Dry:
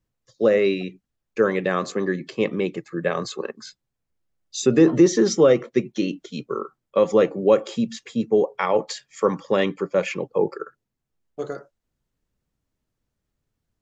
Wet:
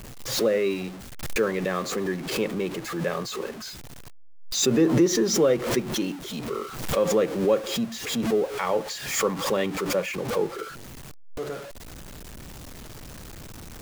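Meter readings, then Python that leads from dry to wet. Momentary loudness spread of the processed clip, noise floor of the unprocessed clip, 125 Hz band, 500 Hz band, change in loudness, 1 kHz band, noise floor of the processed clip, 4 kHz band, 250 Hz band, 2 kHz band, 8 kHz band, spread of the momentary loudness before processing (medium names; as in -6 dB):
21 LU, -81 dBFS, -1.0 dB, -4.5 dB, -4.0 dB, -2.5 dB, -41 dBFS, +4.0 dB, -3.5 dB, -1.5 dB, no reading, 17 LU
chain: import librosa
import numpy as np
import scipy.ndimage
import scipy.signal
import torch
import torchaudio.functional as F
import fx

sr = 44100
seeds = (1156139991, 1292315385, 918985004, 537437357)

y = x + 0.5 * 10.0 ** (-28.5 / 20.0) * np.sign(x)
y = fx.pre_swell(y, sr, db_per_s=69.0)
y = y * 10.0 ** (-6.0 / 20.0)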